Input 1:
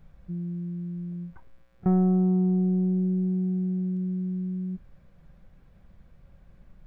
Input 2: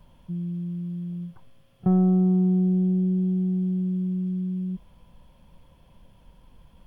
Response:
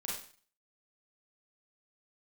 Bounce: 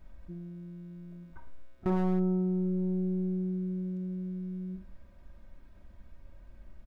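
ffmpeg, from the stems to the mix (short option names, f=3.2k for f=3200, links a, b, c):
-filter_complex "[0:a]volume=-4.5dB,asplit=2[a][b];[b]volume=-6dB[c];[1:a]lowpass=1k,asoftclip=type=tanh:threshold=-17dB,adelay=6.5,volume=-14dB[d];[2:a]atrim=start_sample=2205[e];[c][e]afir=irnorm=-1:irlink=0[f];[a][d][f]amix=inputs=3:normalize=0,aecho=1:1:3.2:0.75,aeval=exprs='0.0944*(abs(mod(val(0)/0.0944+3,4)-2)-1)':c=same"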